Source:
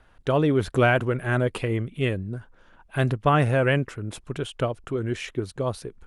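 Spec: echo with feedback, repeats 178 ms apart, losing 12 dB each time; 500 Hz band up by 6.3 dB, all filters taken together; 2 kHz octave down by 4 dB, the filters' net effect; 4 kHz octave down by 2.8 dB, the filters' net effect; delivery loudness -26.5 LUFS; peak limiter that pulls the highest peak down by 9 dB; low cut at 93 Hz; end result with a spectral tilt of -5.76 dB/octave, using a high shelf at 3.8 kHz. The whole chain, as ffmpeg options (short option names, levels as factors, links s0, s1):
-af "highpass=93,equalizer=f=500:t=o:g=8,equalizer=f=2000:t=o:g=-7,highshelf=f=3800:g=6.5,equalizer=f=4000:t=o:g=-4.5,alimiter=limit=0.266:level=0:latency=1,aecho=1:1:178|356|534:0.251|0.0628|0.0157,volume=0.75"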